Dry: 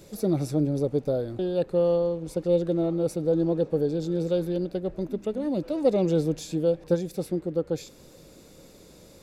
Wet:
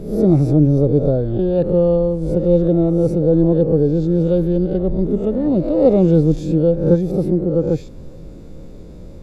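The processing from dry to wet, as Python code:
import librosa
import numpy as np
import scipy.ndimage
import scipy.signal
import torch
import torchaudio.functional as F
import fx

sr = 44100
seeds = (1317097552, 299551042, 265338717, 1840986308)

y = fx.spec_swells(x, sr, rise_s=0.58)
y = fx.tilt_eq(y, sr, slope=-4.0)
y = y * librosa.db_to_amplitude(3.0)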